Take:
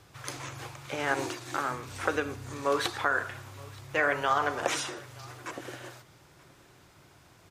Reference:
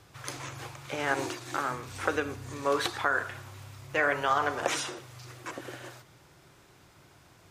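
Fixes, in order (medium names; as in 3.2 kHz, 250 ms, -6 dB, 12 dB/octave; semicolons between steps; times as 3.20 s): inverse comb 925 ms -23.5 dB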